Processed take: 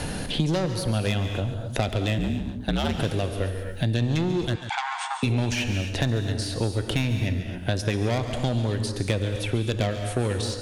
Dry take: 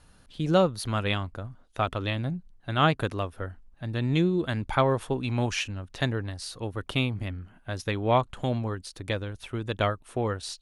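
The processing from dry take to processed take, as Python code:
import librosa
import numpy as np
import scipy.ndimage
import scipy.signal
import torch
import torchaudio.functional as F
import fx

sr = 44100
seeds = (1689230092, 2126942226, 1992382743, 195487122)

p1 = fx.peak_eq(x, sr, hz=1200.0, db=-13.0, octaves=0.65)
p2 = fx.rider(p1, sr, range_db=10, speed_s=2.0)
p3 = p1 + F.gain(torch.from_numpy(p2), -1.0).numpy()
p4 = 10.0 ** (-20.0 / 20.0) * np.tanh(p3 / 10.0 ** (-20.0 / 20.0))
p5 = fx.rev_gated(p4, sr, seeds[0], gate_ms=290, shape='flat', drr_db=8.0)
p6 = fx.ring_mod(p5, sr, carrier_hz=68.0, at=(2.18, 2.98))
p7 = fx.brickwall_bandpass(p6, sr, low_hz=700.0, high_hz=9000.0, at=(4.55, 5.23))
p8 = p7 + fx.echo_single(p7, sr, ms=138, db=-13.5, dry=0)
y = fx.band_squash(p8, sr, depth_pct=100)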